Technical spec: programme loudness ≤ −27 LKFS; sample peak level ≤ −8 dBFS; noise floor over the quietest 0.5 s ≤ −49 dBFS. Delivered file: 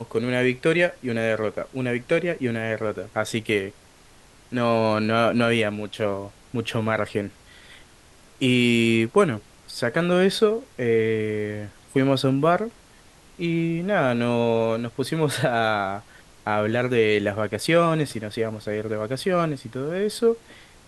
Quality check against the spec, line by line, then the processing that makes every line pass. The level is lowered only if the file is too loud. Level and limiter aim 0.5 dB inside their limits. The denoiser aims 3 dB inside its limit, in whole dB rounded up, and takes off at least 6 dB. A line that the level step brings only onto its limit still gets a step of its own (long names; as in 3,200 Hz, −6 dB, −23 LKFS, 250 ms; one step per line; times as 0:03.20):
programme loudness −23.5 LKFS: out of spec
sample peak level −5.5 dBFS: out of spec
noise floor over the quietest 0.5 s −52 dBFS: in spec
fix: level −4 dB